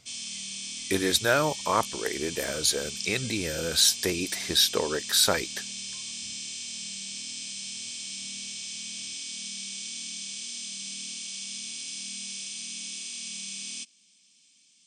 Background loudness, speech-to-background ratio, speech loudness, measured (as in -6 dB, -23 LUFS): -34.5 LUFS, 9.0 dB, -25.5 LUFS